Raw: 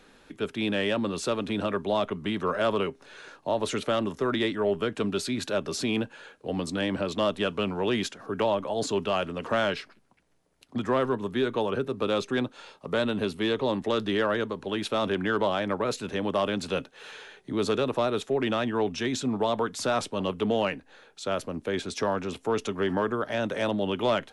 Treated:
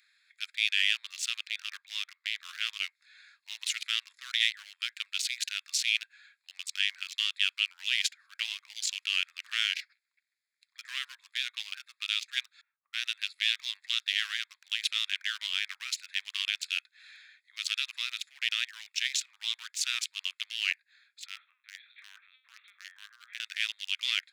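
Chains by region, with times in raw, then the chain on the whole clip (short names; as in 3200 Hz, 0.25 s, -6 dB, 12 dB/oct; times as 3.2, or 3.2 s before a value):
1.47–2.81 HPF 330 Hz + air absorption 98 m
12.61–13.05 rippled Chebyshev low-pass 7800 Hz, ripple 3 dB + high shelf 4000 Hz -5.5 dB + low-pass opened by the level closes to 460 Hz, open at -24.5 dBFS
21.26–23.4 resonator 52 Hz, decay 0.35 s, mix 90% + LPC vocoder at 8 kHz pitch kept + three-band squash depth 40%
whole clip: Wiener smoothing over 15 samples; steep high-pass 2100 Hz 36 dB/oct; gain +9 dB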